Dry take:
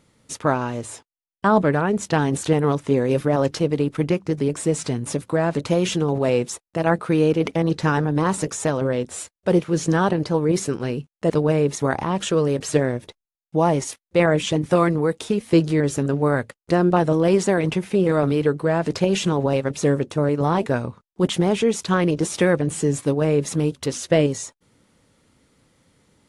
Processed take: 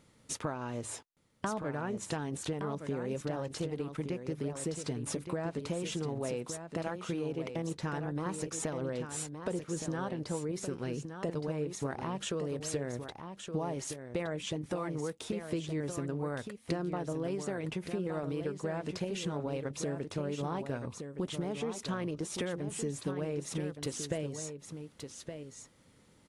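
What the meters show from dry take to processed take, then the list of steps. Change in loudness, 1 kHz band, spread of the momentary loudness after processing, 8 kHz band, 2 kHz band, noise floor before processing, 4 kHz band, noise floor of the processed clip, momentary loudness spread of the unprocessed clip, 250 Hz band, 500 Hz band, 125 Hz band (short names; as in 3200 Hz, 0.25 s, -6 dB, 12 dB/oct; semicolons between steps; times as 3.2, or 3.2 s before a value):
-16.0 dB, -16.5 dB, 4 LU, -10.0 dB, -16.0 dB, under -85 dBFS, -12.0 dB, -63 dBFS, 7 LU, -15.5 dB, -16.5 dB, -15.0 dB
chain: compressor 8:1, threshold -29 dBFS, peak gain reduction 17.5 dB; on a send: echo 1.168 s -8 dB; on the sum: gain -4 dB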